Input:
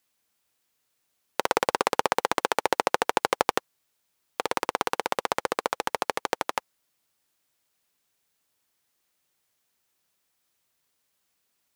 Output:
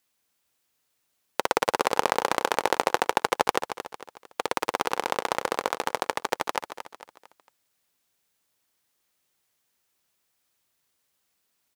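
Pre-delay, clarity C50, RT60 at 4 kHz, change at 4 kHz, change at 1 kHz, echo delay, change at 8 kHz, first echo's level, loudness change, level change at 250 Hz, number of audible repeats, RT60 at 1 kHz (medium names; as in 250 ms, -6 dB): no reverb, no reverb, no reverb, +0.5 dB, +0.5 dB, 226 ms, +0.5 dB, -10.0 dB, +0.5 dB, +0.5 dB, 4, no reverb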